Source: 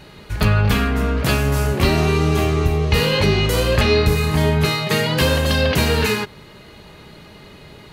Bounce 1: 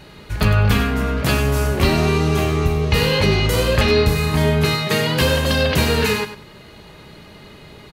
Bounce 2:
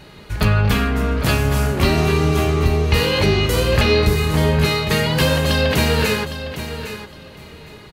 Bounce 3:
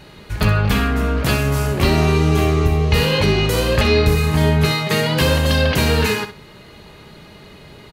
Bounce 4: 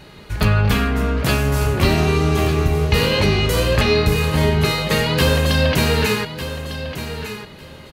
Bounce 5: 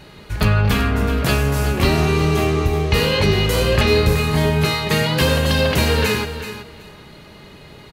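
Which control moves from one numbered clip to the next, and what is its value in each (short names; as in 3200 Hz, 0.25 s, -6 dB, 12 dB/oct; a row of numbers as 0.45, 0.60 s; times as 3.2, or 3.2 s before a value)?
feedback echo, time: 98, 809, 64, 1201, 378 ms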